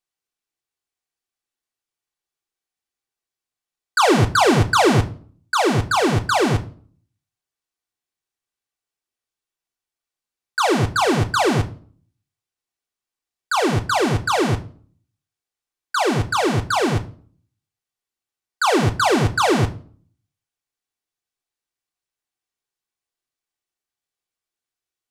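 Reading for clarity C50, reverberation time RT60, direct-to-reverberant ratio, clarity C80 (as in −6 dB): 17.5 dB, non-exponential decay, 4.5 dB, 21.5 dB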